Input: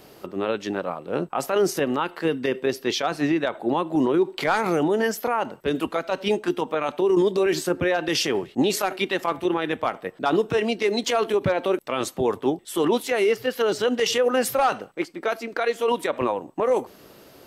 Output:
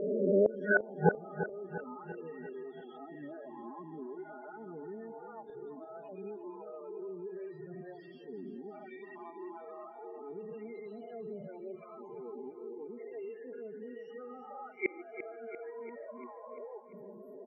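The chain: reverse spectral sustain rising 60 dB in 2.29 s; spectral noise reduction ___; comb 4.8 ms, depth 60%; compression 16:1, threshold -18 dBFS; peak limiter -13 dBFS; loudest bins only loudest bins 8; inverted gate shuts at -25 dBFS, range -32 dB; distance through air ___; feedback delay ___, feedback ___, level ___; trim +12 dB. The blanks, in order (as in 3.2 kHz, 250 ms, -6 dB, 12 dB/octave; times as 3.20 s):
13 dB, 460 m, 344 ms, 57%, -11.5 dB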